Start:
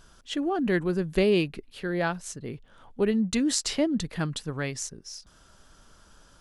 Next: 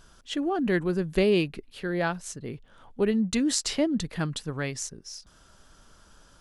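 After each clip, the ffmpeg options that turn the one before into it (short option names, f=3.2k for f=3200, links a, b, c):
-af anull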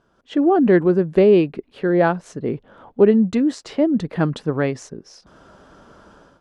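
-af "dynaudnorm=f=130:g=5:m=16dB,bandpass=f=430:t=q:w=0.62:csg=0"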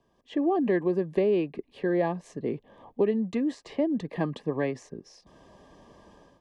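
-filter_complex "[0:a]acrossover=split=150|400|2800[a][b][c][d];[a]acompressor=threshold=-43dB:ratio=4[e];[b]acompressor=threshold=-23dB:ratio=4[f];[c]acompressor=threshold=-20dB:ratio=4[g];[d]acompressor=threshold=-47dB:ratio=4[h];[e][f][g][h]amix=inputs=4:normalize=0,asuperstop=centerf=1400:order=20:qfactor=4.2,volume=-5.5dB"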